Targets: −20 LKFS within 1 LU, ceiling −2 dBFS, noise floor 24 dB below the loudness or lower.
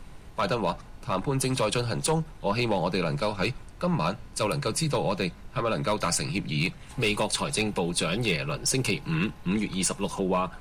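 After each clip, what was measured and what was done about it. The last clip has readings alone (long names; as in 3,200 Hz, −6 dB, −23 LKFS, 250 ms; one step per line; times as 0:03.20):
share of clipped samples 0.3%; peaks flattened at −17.5 dBFS; background noise floor −46 dBFS; target noise floor −52 dBFS; integrated loudness −27.5 LKFS; sample peak −17.5 dBFS; target loudness −20.0 LKFS
→ clipped peaks rebuilt −17.5 dBFS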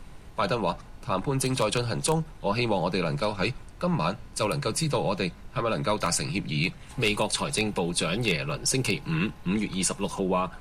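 share of clipped samples 0.0%; background noise floor −46 dBFS; target noise floor −52 dBFS
→ noise reduction from a noise print 6 dB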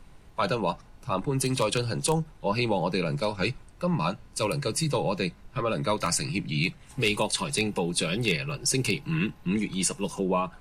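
background noise floor −52 dBFS; integrated loudness −28.0 LKFS; sample peak −8.5 dBFS; target loudness −20.0 LKFS
→ level +8 dB
brickwall limiter −2 dBFS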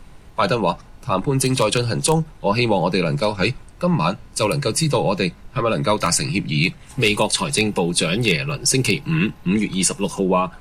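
integrated loudness −20.0 LKFS; sample peak −2.0 dBFS; background noise floor −44 dBFS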